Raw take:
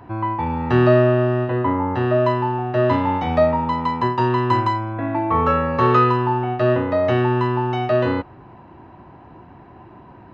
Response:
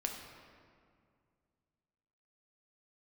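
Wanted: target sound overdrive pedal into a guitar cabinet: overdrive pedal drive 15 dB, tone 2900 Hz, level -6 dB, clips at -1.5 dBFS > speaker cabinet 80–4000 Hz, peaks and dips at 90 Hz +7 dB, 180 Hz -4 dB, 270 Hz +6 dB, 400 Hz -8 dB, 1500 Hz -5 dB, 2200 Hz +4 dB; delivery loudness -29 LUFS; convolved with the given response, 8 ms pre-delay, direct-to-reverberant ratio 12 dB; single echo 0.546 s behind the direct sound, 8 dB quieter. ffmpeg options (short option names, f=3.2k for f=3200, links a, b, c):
-filter_complex "[0:a]aecho=1:1:546:0.398,asplit=2[a][b];[1:a]atrim=start_sample=2205,adelay=8[c];[b][c]afir=irnorm=-1:irlink=0,volume=-13.5dB[d];[a][d]amix=inputs=2:normalize=0,asplit=2[e][f];[f]highpass=f=720:p=1,volume=15dB,asoftclip=type=tanh:threshold=-1.5dB[g];[e][g]amix=inputs=2:normalize=0,lowpass=f=2.9k:p=1,volume=-6dB,highpass=80,equalizer=f=90:t=q:w=4:g=7,equalizer=f=180:t=q:w=4:g=-4,equalizer=f=270:t=q:w=4:g=6,equalizer=f=400:t=q:w=4:g=-8,equalizer=f=1.5k:t=q:w=4:g=-5,equalizer=f=2.2k:t=q:w=4:g=4,lowpass=f=4k:w=0.5412,lowpass=f=4k:w=1.3066,volume=-15dB"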